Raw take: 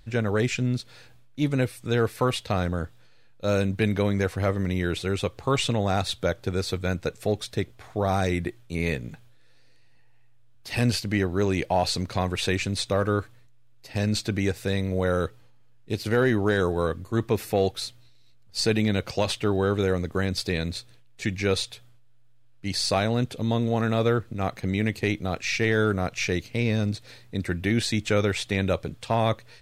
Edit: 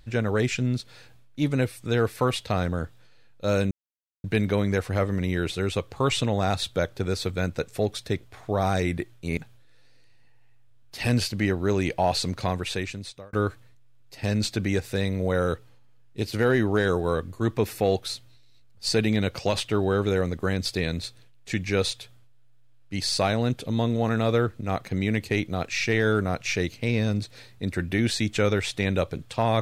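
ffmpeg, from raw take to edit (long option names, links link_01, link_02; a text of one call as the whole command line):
ffmpeg -i in.wav -filter_complex "[0:a]asplit=4[link_01][link_02][link_03][link_04];[link_01]atrim=end=3.71,asetpts=PTS-STARTPTS,afade=type=out:start_time=3.706:duration=0.004:curve=hsin,apad=pad_dur=0.53[link_05];[link_02]atrim=start=3.71:end=8.842,asetpts=PTS-STARTPTS,afade=type=in:duration=0.004:curve=hsin[link_06];[link_03]atrim=start=9.088:end=13.05,asetpts=PTS-STARTPTS,afade=type=out:start_time=3.052:duration=0.91[link_07];[link_04]atrim=start=13.05,asetpts=PTS-STARTPTS,afade=type=in:duration=0.004:curve=hsin[link_08];[link_05][link_06]concat=n=2:v=0:a=1[link_09];[link_07][link_08]concat=n=2:v=0:a=1[link_10];[link_09][link_10]acrossfade=duration=0.004:curve1=hsin:curve2=hsin" out.wav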